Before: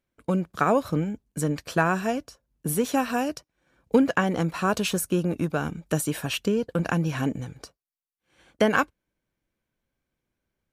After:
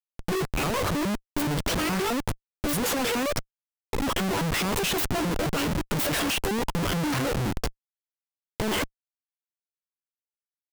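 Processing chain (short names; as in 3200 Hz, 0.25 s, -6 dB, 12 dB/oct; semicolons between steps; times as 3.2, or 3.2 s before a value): trilling pitch shifter +11.5 st, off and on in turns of 0.105 s; negative-ratio compressor -26 dBFS, ratio -0.5; Schmitt trigger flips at -37 dBFS; power-law curve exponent 1.4; gain +7 dB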